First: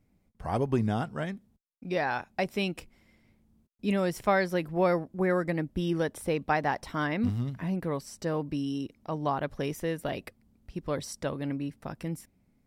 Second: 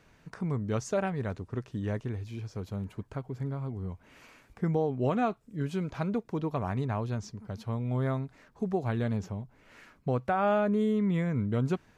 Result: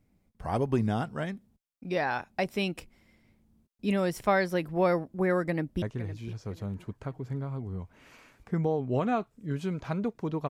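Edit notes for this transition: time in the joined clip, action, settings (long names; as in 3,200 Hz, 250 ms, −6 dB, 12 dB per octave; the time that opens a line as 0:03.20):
first
0:05.47–0:05.82: delay throw 510 ms, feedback 35%, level −15 dB
0:05.82: continue with second from 0:01.92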